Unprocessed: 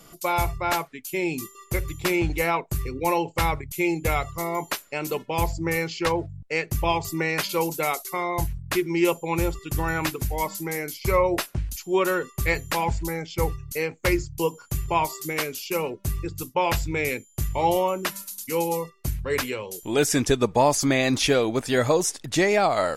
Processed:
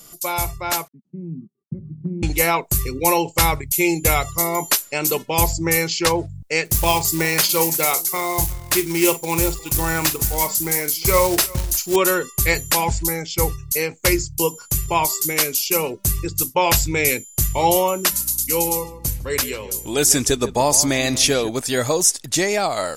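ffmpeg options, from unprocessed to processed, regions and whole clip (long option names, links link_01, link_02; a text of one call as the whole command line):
ffmpeg -i in.wav -filter_complex "[0:a]asettb=1/sr,asplit=3[link_01][link_02][link_03];[link_01]atrim=end=0.884[link_04];[link_02]atrim=start=0.88:end=2.23,asetpts=PTS-STARTPTS,afade=type=in:duration=0.004:curve=qsin,afade=type=out:start_time=1.346:duration=0.004:curve=qsin,acontrast=62,aeval=exprs='sgn(val(0))*max(abs(val(0))-0.0112,0)':channel_layout=same,asuperpass=centerf=180:order=4:qfactor=2.1[link_05];[link_03]atrim=start=2.226[link_06];[link_04][link_05]acrossfade=duration=0.004:curve1=hsin:curve2=qsin[link_07];[link_07][link_06]acrossfade=duration=0.004:curve1=qsin:curve2=hsin,asettb=1/sr,asplit=3[link_08][link_09][link_10];[link_08]atrim=end=6.654[link_11];[link_09]atrim=start=6.65:end=11.96,asetpts=PTS-STARTPTS,afade=type=in:duration=0.004:curve=qsin,afade=type=out:start_time=5.306:duration=0.004:curve=qsin,acrusher=bits=4:mode=log:mix=0:aa=0.000001,asplit=2[link_12][link_13];[link_13]adelay=43,volume=-13.5dB[link_14];[link_12][link_14]amix=inputs=2:normalize=0,atrim=end_sample=234171,aecho=1:1:357:0.0841,atrim=end_sample=234171[link_15];[link_10]atrim=start=11.956[link_16];[link_11][link_15]acrossfade=duration=0.004:curve1=hsin:curve2=qsin[link_17];[link_17][link_16]acrossfade=duration=0.004:curve1=qsin:curve2=hsin,asettb=1/sr,asplit=3[link_18][link_19][link_20];[link_18]atrim=end=18.124[link_21];[link_19]atrim=start=18.12:end=21.49,asetpts=PTS-STARTPTS,afade=type=in:duration=0.004:curve=qsin,afade=type=out:start_time=3.366:duration=0.004:curve=qsin,aeval=exprs='val(0)+0.00794*(sin(2*PI*60*n/s)+sin(2*PI*2*60*n/s)/2+sin(2*PI*3*60*n/s)/3+sin(2*PI*4*60*n/s)/4+sin(2*PI*5*60*n/s)/5)':channel_layout=same,asplit=2[link_22][link_23];[link_23]adelay=152,lowpass=frequency=1800:poles=1,volume=-13dB,asplit=2[link_24][link_25];[link_25]adelay=152,lowpass=frequency=1800:poles=1,volume=0.32,asplit=2[link_26][link_27];[link_27]adelay=152,lowpass=frequency=1800:poles=1,volume=0.32[link_28];[link_22][link_24][link_26][link_28]amix=inputs=4:normalize=0,atrim=end_sample=148617[link_29];[link_20]atrim=start=21.486[link_30];[link_21][link_29]acrossfade=duration=0.004:curve1=hsin:curve2=qsin[link_31];[link_31][link_30]acrossfade=duration=0.004:curve1=qsin:curve2=hsin,bass=frequency=250:gain=0,treble=frequency=4000:gain=12,dynaudnorm=framelen=650:gausssize=5:maxgain=11.5dB,volume=-1dB" out.wav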